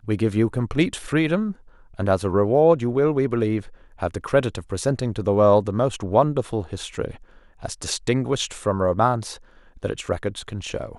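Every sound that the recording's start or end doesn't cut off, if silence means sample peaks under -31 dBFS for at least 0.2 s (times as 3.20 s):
1.99–3.61 s
4.01–7.15 s
7.63–9.36 s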